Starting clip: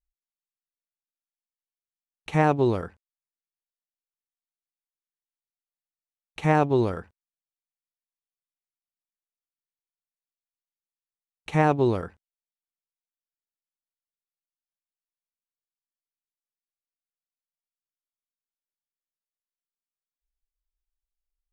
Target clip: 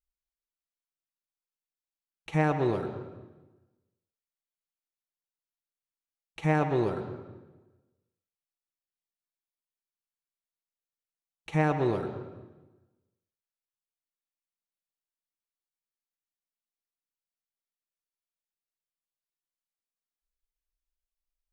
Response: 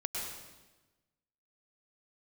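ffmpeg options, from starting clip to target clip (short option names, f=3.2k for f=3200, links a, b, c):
-filter_complex "[0:a]asplit=2[a][b];[1:a]atrim=start_sample=2205,lowpass=5.4k,adelay=6[c];[b][c]afir=irnorm=-1:irlink=0,volume=-8.5dB[d];[a][d]amix=inputs=2:normalize=0,volume=-5.5dB"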